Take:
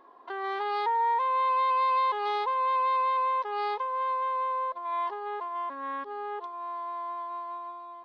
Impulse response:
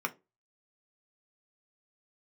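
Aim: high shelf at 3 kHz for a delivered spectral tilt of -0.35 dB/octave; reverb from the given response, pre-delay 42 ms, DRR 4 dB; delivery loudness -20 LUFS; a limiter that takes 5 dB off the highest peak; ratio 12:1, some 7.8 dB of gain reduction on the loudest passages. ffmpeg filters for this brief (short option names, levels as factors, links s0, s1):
-filter_complex "[0:a]highshelf=f=3000:g=-8.5,acompressor=threshold=0.0251:ratio=12,alimiter=level_in=2.11:limit=0.0631:level=0:latency=1,volume=0.473,asplit=2[s0][s1];[1:a]atrim=start_sample=2205,adelay=42[s2];[s1][s2]afir=irnorm=-1:irlink=0,volume=0.316[s3];[s0][s3]amix=inputs=2:normalize=0,volume=5.31"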